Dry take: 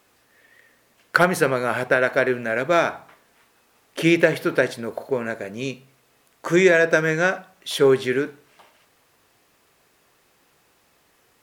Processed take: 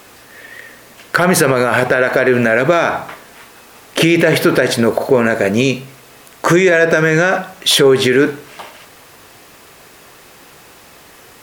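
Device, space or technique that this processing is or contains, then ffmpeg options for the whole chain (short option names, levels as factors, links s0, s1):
loud club master: -af "acompressor=threshold=0.0794:ratio=2,asoftclip=type=hard:threshold=0.316,alimiter=level_in=10.6:limit=0.891:release=50:level=0:latency=1,volume=0.891"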